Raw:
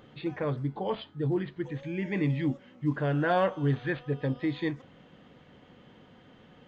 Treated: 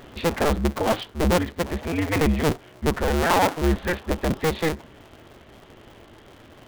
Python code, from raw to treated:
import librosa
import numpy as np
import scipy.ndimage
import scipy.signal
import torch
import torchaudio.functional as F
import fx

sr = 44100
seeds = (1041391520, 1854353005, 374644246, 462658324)

y = fx.cycle_switch(x, sr, every=2, mode='inverted')
y = fx.rider(y, sr, range_db=4, speed_s=2.0)
y = F.gain(torch.from_numpy(y), 6.5).numpy()